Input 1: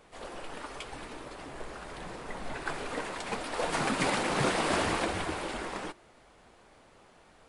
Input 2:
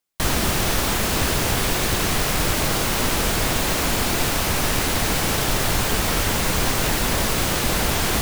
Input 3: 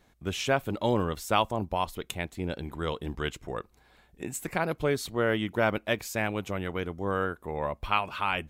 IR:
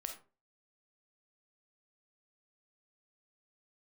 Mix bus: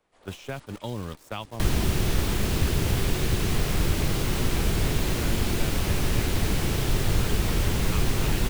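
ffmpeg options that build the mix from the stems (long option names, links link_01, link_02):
-filter_complex "[0:a]volume=-5dB[link_01];[1:a]equalizer=frequency=380:width_type=o:width=0.68:gain=8,adelay=1400,volume=1.5dB[link_02];[2:a]aeval=exprs='val(0)*gte(abs(val(0)),0.0141)':channel_layout=same,volume=-1.5dB[link_03];[link_01][link_02][link_03]amix=inputs=3:normalize=0,acrossover=split=2700[link_04][link_05];[link_05]acompressor=threshold=-35dB:ratio=4:attack=1:release=60[link_06];[link_04][link_06]amix=inputs=2:normalize=0,agate=range=-10dB:threshold=-33dB:ratio=16:detection=peak,acrossover=split=190|3000[link_07][link_08][link_09];[link_08]acompressor=threshold=-35dB:ratio=4[link_10];[link_07][link_10][link_09]amix=inputs=3:normalize=0"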